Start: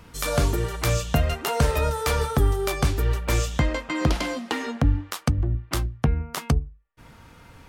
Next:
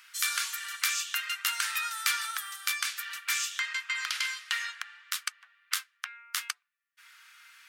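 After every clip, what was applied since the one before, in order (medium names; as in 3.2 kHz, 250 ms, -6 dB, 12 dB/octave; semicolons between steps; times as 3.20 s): steep high-pass 1.4 kHz 36 dB/octave; trim +1.5 dB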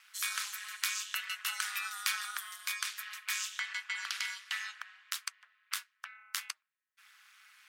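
ring modulator 100 Hz; trim -2.5 dB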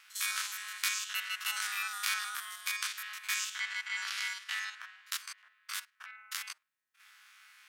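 spectrogram pixelated in time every 50 ms; trim +3 dB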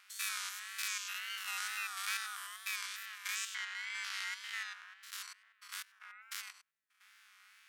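spectrogram pixelated in time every 100 ms; wow and flutter 92 cents; trim -3 dB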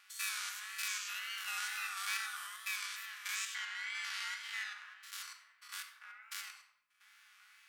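simulated room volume 2700 m³, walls furnished, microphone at 2.4 m; trim -2 dB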